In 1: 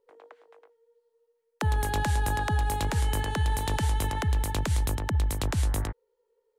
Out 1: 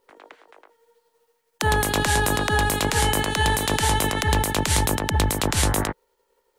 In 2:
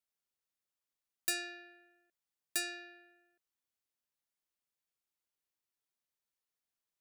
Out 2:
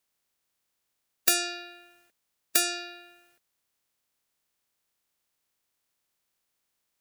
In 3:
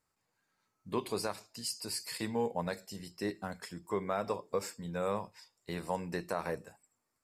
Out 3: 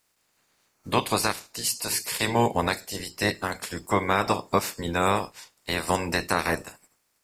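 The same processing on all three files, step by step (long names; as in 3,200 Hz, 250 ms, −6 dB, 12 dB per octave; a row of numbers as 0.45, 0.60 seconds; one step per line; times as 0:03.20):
ceiling on every frequency bin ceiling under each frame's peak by 18 dB
normalise the peak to −6 dBFS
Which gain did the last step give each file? +5.0, +12.0, +11.0 decibels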